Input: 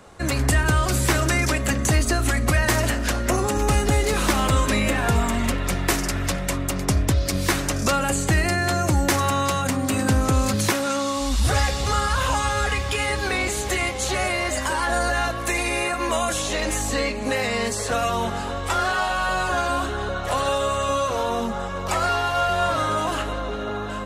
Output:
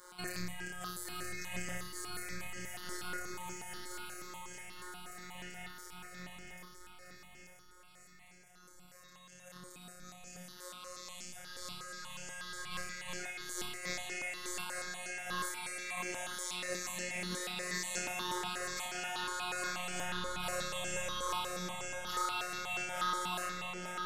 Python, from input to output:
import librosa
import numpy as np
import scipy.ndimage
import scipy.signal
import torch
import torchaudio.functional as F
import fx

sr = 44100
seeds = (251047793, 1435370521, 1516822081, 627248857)

y = fx.doppler_pass(x, sr, speed_mps=11, closest_m=4.9, pass_at_s=7.53)
y = scipy.signal.sosfilt(scipy.signal.butter(2, 53.0, 'highpass', fs=sr, output='sos'), y)
y = fx.tilt_shelf(y, sr, db=-6.0, hz=1500.0)
y = fx.over_compress(y, sr, threshold_db=-55.0, ratio=-1.0)
y = fx.room_flutter(y, sr, wall_m=5.2, rt60_s=0.56)
y = fx.robotise(y, sr, hz=180.0)
y = fx.echo_feedback(y, sr, ms=881, feedback_pct=47, wet_db=-6)
y = fx.phaser_held(y, sr, hz=8.3, low_hz=710.0, high_hz=3800.0)
y = y * librosa.db_to_amplitude(9.5)